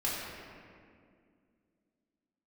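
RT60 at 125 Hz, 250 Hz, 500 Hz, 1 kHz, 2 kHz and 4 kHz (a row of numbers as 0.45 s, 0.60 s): 2.6 s, 3.2 s, 2.4 s, 1.9 s, 1.8 s, 1.3 s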